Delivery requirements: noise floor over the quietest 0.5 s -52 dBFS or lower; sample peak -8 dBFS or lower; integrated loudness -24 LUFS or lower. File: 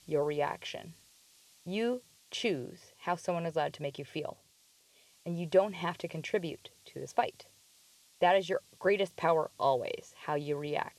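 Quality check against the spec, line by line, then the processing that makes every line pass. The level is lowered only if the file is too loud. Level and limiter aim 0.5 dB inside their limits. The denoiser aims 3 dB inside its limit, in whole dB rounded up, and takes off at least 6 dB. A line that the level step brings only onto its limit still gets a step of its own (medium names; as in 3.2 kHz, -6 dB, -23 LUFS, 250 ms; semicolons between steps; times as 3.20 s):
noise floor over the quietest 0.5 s -66 dBFS: pass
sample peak -14.5 dBFS: pass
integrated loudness -33.5 LUFS: pass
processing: none needed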